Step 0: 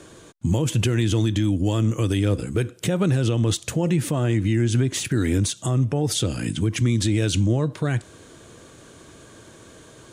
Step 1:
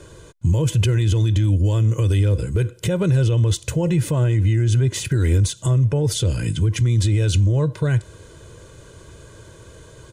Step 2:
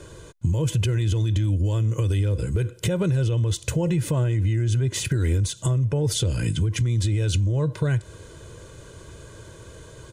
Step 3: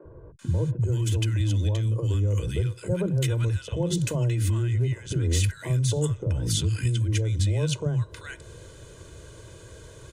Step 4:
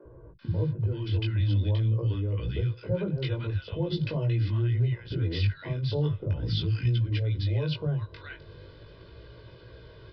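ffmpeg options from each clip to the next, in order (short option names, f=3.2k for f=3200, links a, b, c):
-af "lowshelf=f=150:g=11.5,aecho=1:1:2:0.59,alimiter=limit=-9.5dB:level=0:latency=1:release=24,volume=-1.5dB"
-af "acompressor=threshold=-19dB:ratio=6"
-filter_complex "[0:a]acrossover=split=210|1100[a][b][c];[a]adelay=40[d];[c]adelay=390[e];[d][b][e]amix=inputs=3:normalize=0,volume=-1.5dB"
-af "flanger=delay=16.5:depth=4.3:speed=0.42,aresample=11025,aresample=44100"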